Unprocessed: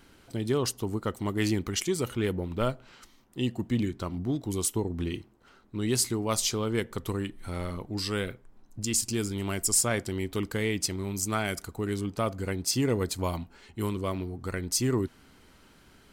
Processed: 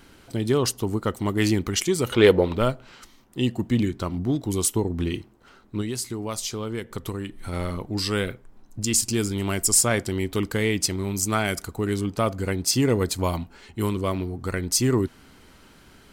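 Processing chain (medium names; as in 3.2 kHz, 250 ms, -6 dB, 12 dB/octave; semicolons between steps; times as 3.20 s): 2.12–2.57 s: graphic EQ 500/1000/2000/4000 Hz +12/+7/+5/+11 dB; 5.81–7.53 s: compression 5:1, threshold -33 dBFS, peak gain reduction 10.5 dB; trim +5.5 dB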